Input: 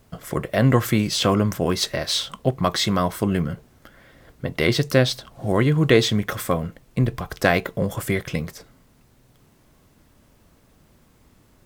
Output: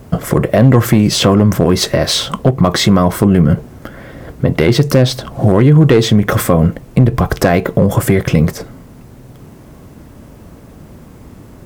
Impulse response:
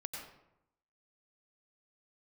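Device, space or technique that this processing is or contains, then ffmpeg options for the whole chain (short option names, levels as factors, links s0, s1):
mastering chain: -af "highpass=f=54:p=1,equalizer=f=3800:t=o:w=0.77:g=-2.5,acompressor=threshold=0.0562:ratio=2,asoftclip=type=tanh:threshold=0.211,tiltshelf=f=940:g=5,asoftclip=type=hard:threshold=0.188,alimiter=level_in=7.94:limit=0.891:release=50:level=0:latency=1,volume=0.891"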